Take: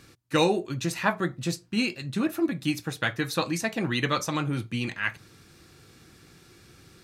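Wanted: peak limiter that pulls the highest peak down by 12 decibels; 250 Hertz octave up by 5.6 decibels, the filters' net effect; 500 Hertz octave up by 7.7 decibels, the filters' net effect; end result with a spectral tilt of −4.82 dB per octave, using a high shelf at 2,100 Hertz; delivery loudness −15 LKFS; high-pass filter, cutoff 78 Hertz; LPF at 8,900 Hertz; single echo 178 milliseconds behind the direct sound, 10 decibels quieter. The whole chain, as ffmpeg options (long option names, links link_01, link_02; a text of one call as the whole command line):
ffmpeg -i in.wav -af "highpass=78,lowpass=8900,equalizer=frequency=250:width_type=o:gain=4.5,equalizer=frequency=500:width_type=o:gain=8,highshelf=frequency=2100:gain=4.5,alimiter=limit=-15.5dB:level=0:latency=1,aecho=1:1:178:0.316,volume=11.5dB" out.wav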